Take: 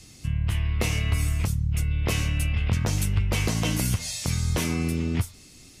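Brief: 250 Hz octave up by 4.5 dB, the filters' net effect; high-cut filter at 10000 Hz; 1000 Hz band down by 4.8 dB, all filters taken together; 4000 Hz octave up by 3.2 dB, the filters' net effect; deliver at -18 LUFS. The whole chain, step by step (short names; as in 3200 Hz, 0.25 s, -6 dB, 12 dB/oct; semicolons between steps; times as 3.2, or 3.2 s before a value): LPF 10000 Hz; bell 250 Hz +6.5 dB; bell 1000 Hz -7 dB; bell 4000 Hz +5 dB; gain +7 dB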